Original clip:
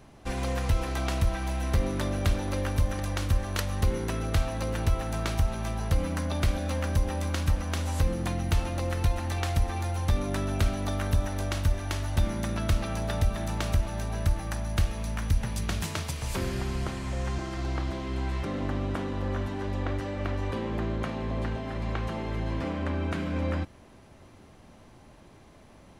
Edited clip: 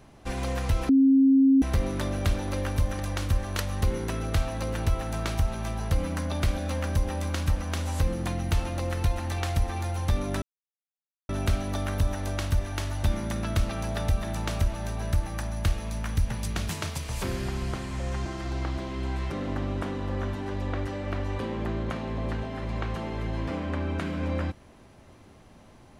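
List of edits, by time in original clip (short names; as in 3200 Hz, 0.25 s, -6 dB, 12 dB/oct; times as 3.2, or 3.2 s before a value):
0.89–1.62 bleep 269 Hz -15 dBFS
10.42 insert silence 0.87 s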